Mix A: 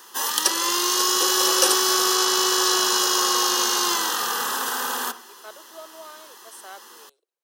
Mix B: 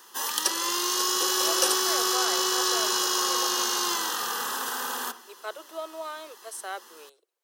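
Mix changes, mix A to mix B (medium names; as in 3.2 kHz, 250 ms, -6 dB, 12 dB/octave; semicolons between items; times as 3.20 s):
speech +6.0 dB; background -5.0 dB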